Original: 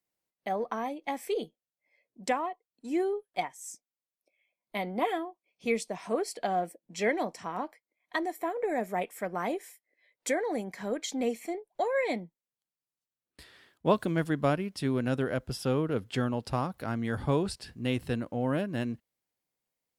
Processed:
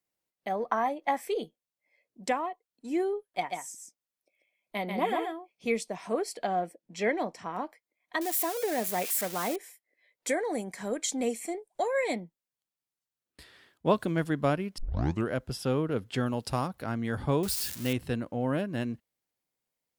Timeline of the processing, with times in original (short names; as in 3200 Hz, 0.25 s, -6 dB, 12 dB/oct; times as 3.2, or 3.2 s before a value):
0.71–1.21 spectral gain 550–2100 Hz +7 dB
3.28–5.69 echo 0.14 s -4.5 dB
6.45–7.54 high shelf 8200 Hz -9 dB
8.21–9.56 switching spikes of -25 dBFS
10.29–12.15 bell 8500 Hz +12 dB
14.78 tape start 0.51 s
16.26–16.68 high shelf 4900 Hz +10 dB
17.43–17.93 switching spikes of -26 dBFS